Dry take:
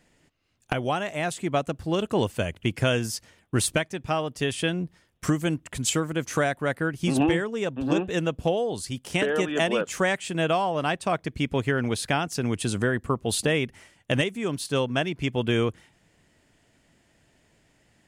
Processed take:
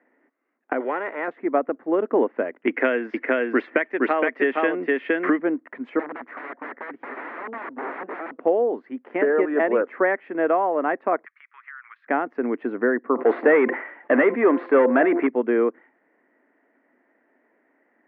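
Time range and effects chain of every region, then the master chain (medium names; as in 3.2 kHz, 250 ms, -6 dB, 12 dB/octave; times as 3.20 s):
0.80–1.28 s: comb 2.1 ms, depth 57% + spectrum-flattening compressor 2:1
2.67–5.39 s: frequency weighting D + delay 466 ms -3 dB + three bands compressed up and down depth 100%
5.99–8.43 s: high-pass 51 Hz 6 dB/octave + integer overflow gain 27 dB
11.25–12.07 s: elliptic high-pass 1.2 kHz, stop band 50 dB + compression 5:1, threshold -38 dBFS
13.15–15.27 s: overdrive pedal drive 23 dB, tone 3 kHz, clips at -11.5 dBFS + de-hum 173.2 Hz, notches 6 + decay stretcher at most 80 dB/s
whole clip: Chebyshev band-pass 250–2000 Hz, order 4; dynamic bell 390 Hz, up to +4 dB, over -35 dBFS, Q 0.88; trim +2.5 dB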